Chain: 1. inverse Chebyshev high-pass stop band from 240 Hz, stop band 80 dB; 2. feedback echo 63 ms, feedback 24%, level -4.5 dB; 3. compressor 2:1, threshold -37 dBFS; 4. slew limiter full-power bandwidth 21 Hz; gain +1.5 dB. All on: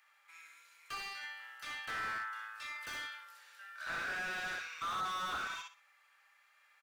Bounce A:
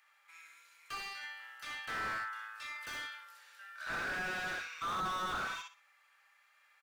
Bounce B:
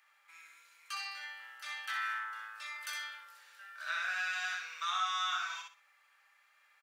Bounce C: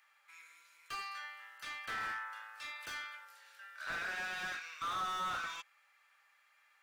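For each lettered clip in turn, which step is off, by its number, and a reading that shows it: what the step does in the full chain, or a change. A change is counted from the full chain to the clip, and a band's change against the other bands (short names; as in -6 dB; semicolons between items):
3, momentary loudness spread change +1 LU; 4, distortion -3 dB; 2, momentary loudness spread change +1 LU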